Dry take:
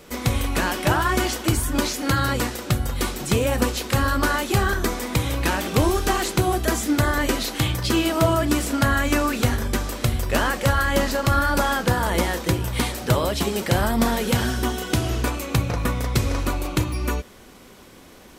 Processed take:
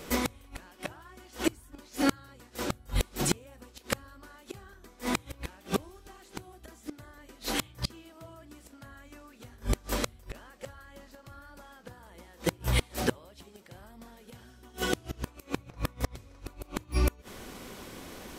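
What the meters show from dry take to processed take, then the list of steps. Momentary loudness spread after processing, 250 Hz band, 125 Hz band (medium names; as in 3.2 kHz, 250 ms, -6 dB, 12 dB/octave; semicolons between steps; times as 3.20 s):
21 LU, -12.5 dB, -15.5 dB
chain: inverted gate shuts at -15 dBFS, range -32 dB; trim +2 dB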